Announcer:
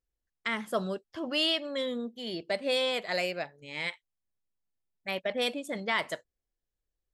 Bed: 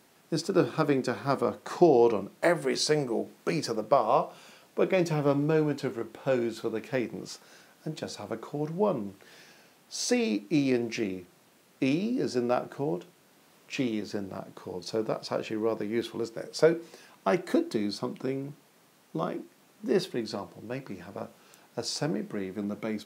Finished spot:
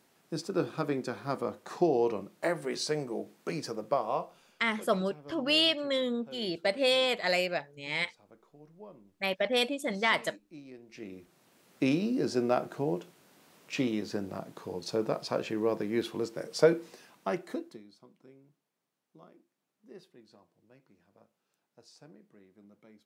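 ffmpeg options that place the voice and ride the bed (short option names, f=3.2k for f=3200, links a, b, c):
-filter_complex "[0:a]adelay=4150,volume=2.5dB[a];[1:a]volume=16.5dB,afade=t=out:st=3.98:d=0.87:silence=0.141254,afade=t=in:st=10.87:d=0.91:silence=0.0749894,afade=t=out:st=16.73:d=1.11:silence=0.0630957[b];[a][b]amix=inputs=2:normalize=0"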